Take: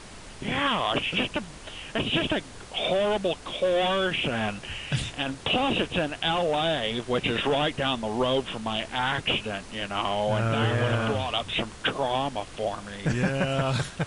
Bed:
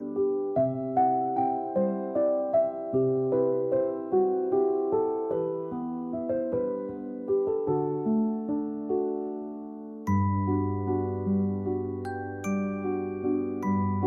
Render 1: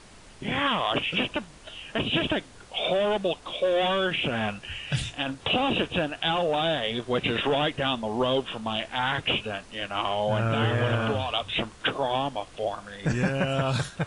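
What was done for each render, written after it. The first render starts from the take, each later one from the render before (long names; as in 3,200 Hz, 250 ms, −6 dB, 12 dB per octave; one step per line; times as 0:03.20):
noise reduction from a noise print 6 dB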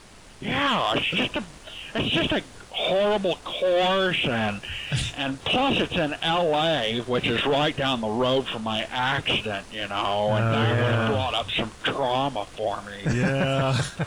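transient designer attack −3 dB, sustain +2 dB
leveller curve on the samples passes 1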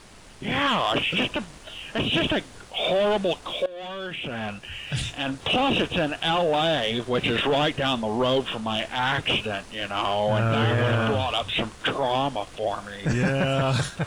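0:03.66–0:05.40: fade in linear, from −20 dB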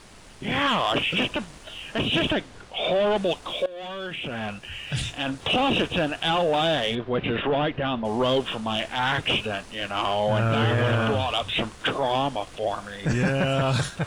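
0:02.33–0:03.16: high-shelf EQ 6,600 Hz −10 dB
0:06.95–0:08.05: high-frequency loss of the air 360 metres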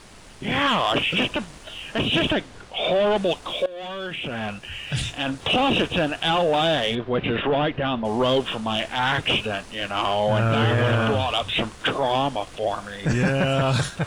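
level +2 dB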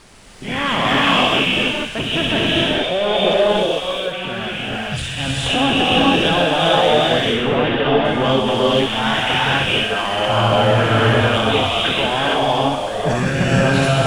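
delay with a high-pass on its return 63 ms, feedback 69%, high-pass 1,800 Hz, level −6 dB
reverb whose tail is shaped and stops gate 480 ms rising, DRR −5 dB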